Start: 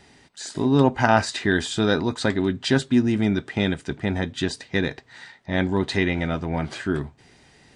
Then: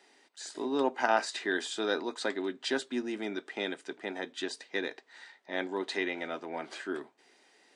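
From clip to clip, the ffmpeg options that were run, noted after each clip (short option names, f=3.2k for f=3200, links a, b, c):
-af "highpass=f=310:w=0.5412,highpass=f=310:w=1.3066,volume=-8dB"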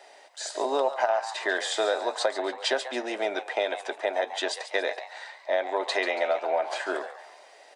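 -filter_complex "[0:a]highpass=f=610:t=q:w=5.2,acompressor=threshold=-29dB:ratio=10,asplit=5[a][b][c][d][e];[b]adelay=140,afreqshift=120,volume=-12dB[f];[c]adelay=280,afreqshift=240,volume=-19.7dB[g];[d]adelay=420,afreqshift=360,volume=-27.5dB[h];[e]adelay=560,afreqshift=480,volume=-35.2dB[i];[a][f][g][h][i]amix=inputs=5:normalize=0,volume=7.5dB"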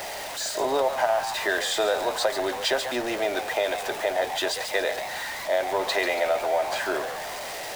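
-af "aeval=exprs='val(0)+0.5*0.0335*sgn(val(0))':c=same"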